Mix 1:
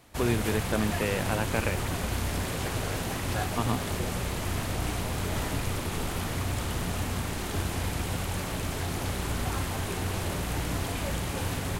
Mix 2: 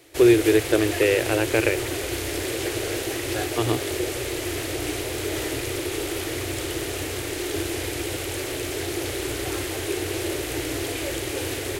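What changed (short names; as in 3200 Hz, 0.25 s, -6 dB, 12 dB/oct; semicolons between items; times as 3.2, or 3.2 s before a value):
first voice +3.5 dB; background: add low shelf 63 Hz -10.5 dB; master: add EQ curve 130 Hz 0 dB, 200 Hz -22 dB, 330 Hz +14 dB, 1000 Hz -5 dB, 2000 Hz +6 dB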